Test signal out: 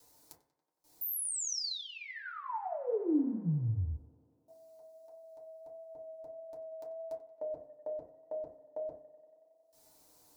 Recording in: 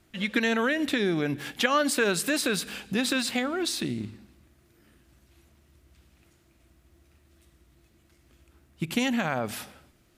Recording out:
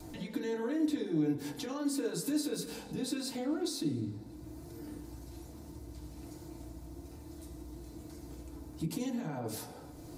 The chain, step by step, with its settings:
brickwall limiter −21.5 dBFS
upward compression, threshold −34 dBFS
noise gate with hold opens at −54 dBFS
downward compressor, threshold −31 dBFS
flat-topped bell 2,000 Hz −11.5 dB
feedback delay network reverb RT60 0.37 s, low-frequency decay 0.9×, high-frequency decay 0.35×, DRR −4.5 dB
dynamic equaliser 800 Hz, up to −7 dB, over −44 dBFS, Q 1.3
pitch vibrato 1.6 Hz 15 cents
hum removal 136.8 Hz, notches 26
on a send: tape delay 92 ms, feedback 84%, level −18 dB, low-pass 3,800 Hz
on the sum: level −5 dB

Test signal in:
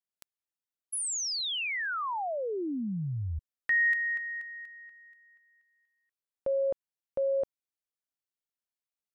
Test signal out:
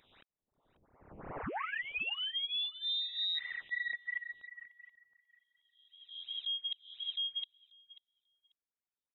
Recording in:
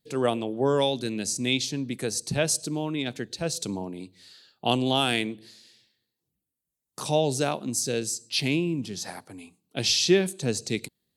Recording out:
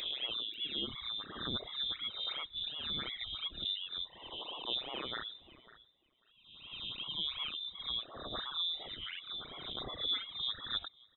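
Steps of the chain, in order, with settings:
peak hold with a rise ahead of every peak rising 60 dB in 1.07 s
reversed playback
downward compressor 6 to 1, threshold −32 dBFS
reversed playback
all-pass phaser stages 12, 2.8 Hz, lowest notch 210–2,300 Hz
voice inversion scrambler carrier 3,800 Hz
on a send: repeating echo 540 ms, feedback 15%, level −16 dB
on the sum: reverb reduction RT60 1.4 s

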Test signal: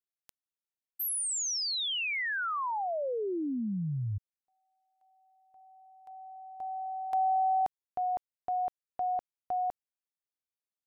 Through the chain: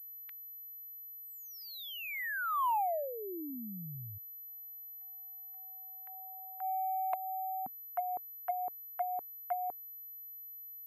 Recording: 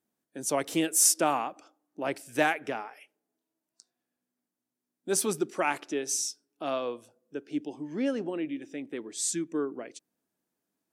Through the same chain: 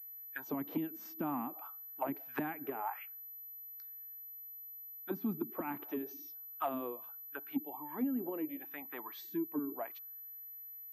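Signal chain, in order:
envelope filter 240–2,000 Hz, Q 3.6, down, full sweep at −25.5 dBFS
downward compressor 2.5 to 1, threshold −40 dBFS
graphic EQ with 10 bands 125 Hz +4 dB, 500 Hz −11 dB, 1,000 Hz +9 dB, 2,000 Hz +5 dB, 4,000 Hz +5 dB
soft clipping −30.5 dBFS
switching amplifier with a slow clock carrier 12,000 Hz
level +8 dB

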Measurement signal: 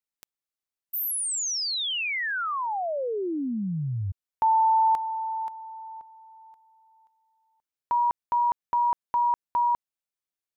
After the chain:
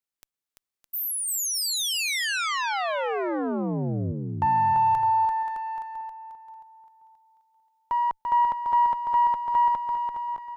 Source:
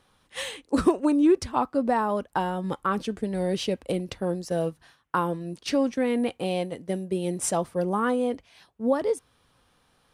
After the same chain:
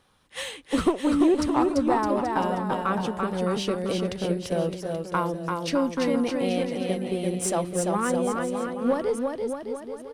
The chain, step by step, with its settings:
one-sided soft clipper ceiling −14.5 dBFS
bouncing-ball delay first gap 340 ms, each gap 0.8×, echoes 5

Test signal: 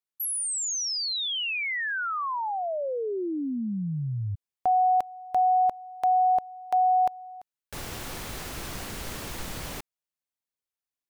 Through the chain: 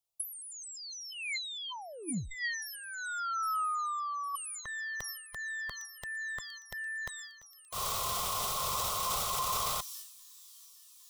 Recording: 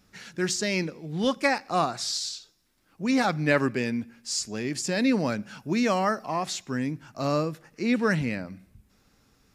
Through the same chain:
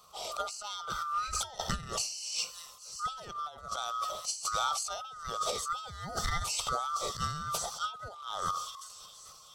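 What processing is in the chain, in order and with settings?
neighbouring bands swapped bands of 1,000 Hz
phaser with its sweep stopped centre 700 Hz, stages 4
on a send: delay with a high-pass on its return 807 ms, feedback 80%, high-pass 4,700 Hz, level −20 dB
on the sum: transient designer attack −5 dB, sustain +11 dB
compressor whose output falls as the input rises −37 dBFS, ratio −0.5
level +2.5 dB

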